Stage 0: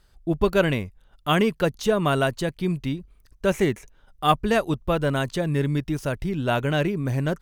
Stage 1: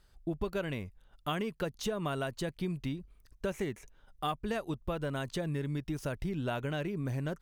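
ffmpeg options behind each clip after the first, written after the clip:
ffmpeg -i in.wav -af "acompressor=threshold=-26dB:ratio=6,volume=-5dB" out.wav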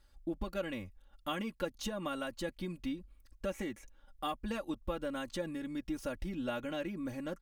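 ffmpeg -i in.wav -af "aecho=1:1:3.6:0.86,volume=-4.5dB" out.wav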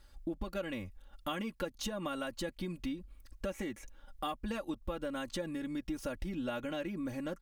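ffmpeg -i in.wav -af "acompressor=threshold=-45dB:ratio=2,volume=6dB" out.wav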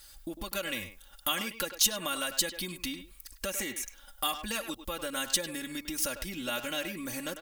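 ffmpeg -i in.wav -filter_complex "[0:a]tiltshelf=frequency=700:gain=-3,asplit=2[link_01][link_02];[link_02]adelay=100,highpass=300,lowpass=3400,asoftclip=type=hard:threshold=-31dB,volume=-9dB[link_03];[link_01][link_03]amix=inputs=2:normalize=0,crystalizer=i=6:c=0" out.wav

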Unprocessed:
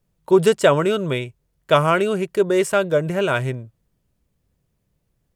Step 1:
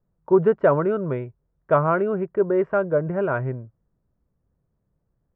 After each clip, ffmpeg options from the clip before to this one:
ffmpeg -i in.wav -af "lowpass=frequency=1500:width=0.5412,lowpass=frequency=1500:width=1.3066,volume=-2.5dB" out.wav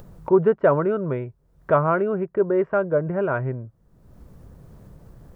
ffmpeg -i in.wav -af "acompressor=mode=upward:threshold=-23dB:ratio=2.5" out.wav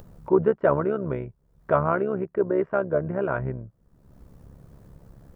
ffmpeg -i in.wav -af "tremolo=f=69:d=0.667" out.wav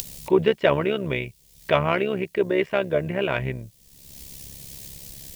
ffmpeg -i in.wav -af "aexciter=amount=14:drive=8.4:freq=2200,volume=1dB" out.wav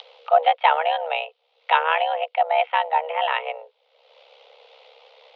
ffmpeg -i in.wav -af "highpass=frequency=180:width_type=q:width=0.5412,highpass=frequency=180:width_type=q:width=1.307,lowpass=frequency=3200:width_type=q:width=0.5176,lowpass=frequency=3200:width_type=q:width=0.7071,lowpass=frequency=3200:width_type=q:width=1.932,afreqshift=320,volume=2dB" out.wav

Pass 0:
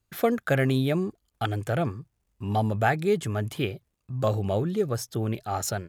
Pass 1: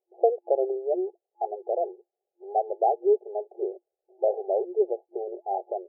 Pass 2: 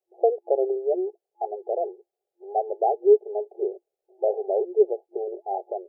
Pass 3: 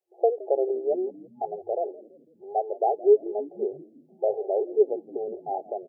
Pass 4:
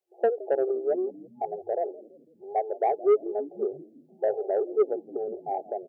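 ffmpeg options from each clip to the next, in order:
ffmpeg -i in.wav -af "afftfilt=real='re*between(b*sr/4096,350,850)':imag='im*between(b*sr/4096,350,850)':win_size=4096:overlap=0.75,volume=3dB" out.wav
ffmpeg -i in.wav -af "adynamicequalizer=threshold=0.0112:dfrequency=420:dqfactor=7.8:tfrequency=420:tqfactor=7.8:attack=5:release=100:ratio=0.375:range=3:mode=boostabove:tftype=bell" out.wav
ffmpeg -i in.wav -filter_complex "[0:a]asplit=5[link_01][link_02][link_03][link_04][link_05];[link_02]adelay=166,afreqshift=-66,volume=-19dB[link_06];[link_03]adelay=332,afreqshift=-132,volume=-25.6dB[link_07];[link_04]adelay=498,afreqshift=-198,volume=-32.1dB[link_08];[link_05]adelay=664,afreqshift=-264,volume=-38.7dB[link_09];[link_01][link_06][link_07][link_08][link_09]amix=inputs=5:normalize=0,volume=-1.5dB" out.wav
ffmpeg -i in.wav -af "asoftclip=type=tanh:threshold=-14dB" out.wav

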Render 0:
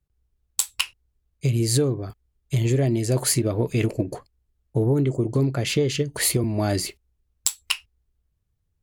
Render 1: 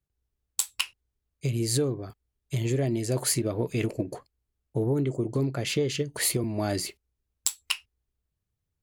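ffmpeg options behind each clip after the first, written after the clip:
ffmpeg -i in.wav -af "lowshelf=frequency=74:gain=-10,volume=-4dB" out.wav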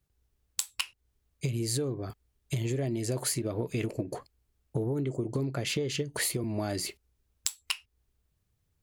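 ffmpeg -i in.wav -af "acompressor=threshold=-37dB:ratio=4,volume=7dB" out.wav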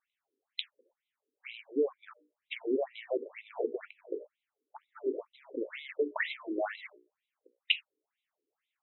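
ffmpeg -i in.wav -af "bandreject=frequency=60:width_type=h:width=6,bandreject=frequency=120:width_type=h:width=6,bandreject=frequency=180:width_type=h:width=6,bandreject=frequency=240:width_type=h:width=6,bandreject=frequency=300:width_type=h:width=6,bandreject=frequency=360:width_type=h:width=6,bandreject=frequency=420:width_type=h:width=6,bandreject=frequency=480:width_type=h:width=6,bandreject=frequency=540:width_type=h:width=6,bandreject=frequency=600:width_type=h:width=6,afftfilt=real='re*between(b*sr/1024,350*pow(2900/350,0.5+0.5*sin(2*PI*2.1*pts/sr))/1.41,350*pow(2900/350,0.5+0.5*sin(2*PI*2.1*pts/sr))*1.41)':imag='im*between(b*sr/1024,350*pow(2900/350,0.5+0.5*sin(2*PI*2.1*pts/sr))/1.41,350*pow(2900/350,0.5+0.5*sin(2*PI*2.1*pts/sr))*1.41)':win_size=1024:overlap=0.75,volume=6dB" out.wav

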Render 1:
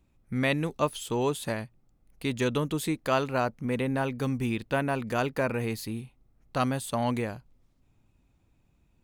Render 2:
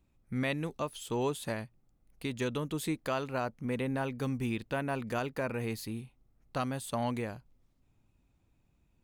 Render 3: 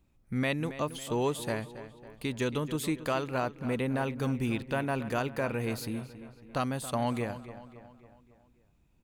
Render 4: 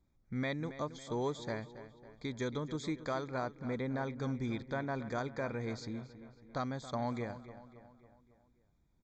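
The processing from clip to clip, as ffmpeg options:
ffmpeg -i in.wav -af "alimiter=limit=-18dB:level=0:latency=1:release=300,volume=-4dB" out.wav
ffmpeg -i in.wav -filter_complex "[0:a]asplit=2[link_01][link_02];[link_02]adelay=275,lowpass=frequency=4400:poles=1,volume=-13.5dB,asplit=2[link_03][link_04];[link_04]adelay=275,lowpass=frequency=4400:poles=1,volume=0.52,asplit=2[link_05][link_06];[link_06]adelay=275,lowpass=frequency=4400:poles=1,volume=0.52,asplit=2[link_07][link_08];[link_08]adelay=275,lowpass=frequency=4400:poles=1,volume=0.52,asplit=2[link_09][link_10];[link_10]adelay=275,lowpass=frequency=4400:poles=1,volume=0.52[link_11];[link_01][link_03][link_05][link_07][link_09][link_11]amix=inputs=6:normalize=0,volume=2.5dB" out.wav
ffmpeg -i in.wav -af "aresample=16000,aresample=44100,asuperstop=centerf=2800:order=12:qfactor=3.5,volume=-6dB" out.wav

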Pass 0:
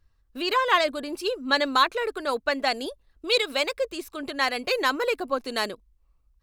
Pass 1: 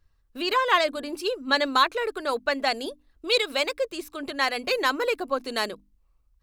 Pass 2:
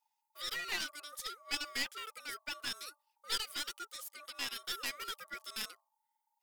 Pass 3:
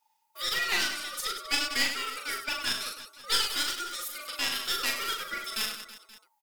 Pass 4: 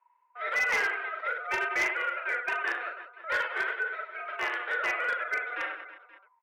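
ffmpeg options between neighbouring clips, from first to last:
ffmpeg -i in.wav -af "bandreject=frequency=50:width_type=h:width=6,bandreject=frequency=100:width_type=h:width=6,bandreject=frequency=150:width_type=h:width=6,bandreject=frequency=200:width_type=h:width=6,bandreject=frequency=250:width_type=h:width=6,bandreject=frequency=300:width_type=h:width=6" out.wav
ffmpeg -i in.wav -af "aeval=exprs='val(0)*sin(2*PI*880*n/s)':channel_layout=same,aderivative,aeval=exprs='clip(val(0),-1,0.0119)':channel_layout=same" out.wav
ffmpeg -i in.wav -af "aecho=1:1:40|100|190|325|527.5:0.631|0.398|0.251|0.158|0.1,volume=8dB" out.wav
ffmpeg -i in.wav -af "highpass=frequency=300:width_type=q:width=0.5412,highpass=frequency=300:width_type=q:width=1.307,lowpass=frequency=2100:width_type=q:width=0.5176,lowpass=frequency=2100:width_type=q:width=0.7071,lowpass=frequency=2100:width_type=q:width=1.932,afreqshift=91,volume=29dB,asoftclip=hard,volume=-29dB,volume=6.5dB" out.wav

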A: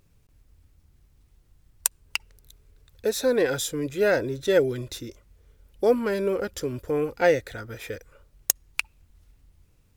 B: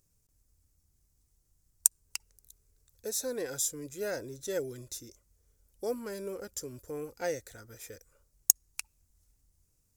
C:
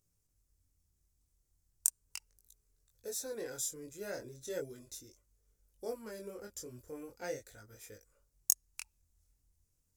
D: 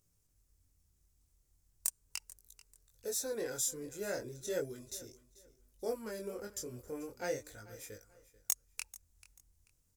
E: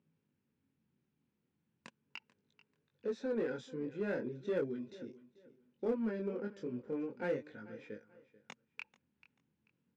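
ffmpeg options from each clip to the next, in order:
ffmpeg -i in.wav -af "highshelf=frequency=4600:width_type=q:width=1.5:gain=12,volume=-13.5dB" out.wav
ffmpeg -i in.wav -af "flanger=delay=19:depth=6.1:speed=0.38,volume=-3dB" out.wav
ffmpeg -i in.wav -af "asoftclip=type=tanh:threshold=-24dB,aecho=1:1:438|876:0.112|0.0303,volume=3.5dB" out.wav
ffmpeg -i in.wav -filter_complex "[0:a]highpass=frequency=150:width=0.5412,highpass=frequency=150:width=1.3066,equalizer=frequency=160:width_type=q:width=4:gain=4,equalizer=frequency=230:width_type=q:width=4:gain=9,equalizer=frequency=670:width_type=q:width=4:gain=-10,equalizer=frequency=1200:width_type=q:width=4:gain=-7,equalizer=frequency=2000:width_type=q:width=4:gain=-5,lowpass=frequency=2700:width=0.5412,lowpass=frequency=2700:width=1.3066,asplit=2[link_01][link_02];[link_02]asoftclip=type=hard:threshold=-37dB,volume=-4dB[link_03];[link_01][link_03]amix=inputs=2:normalize=0" out.wav

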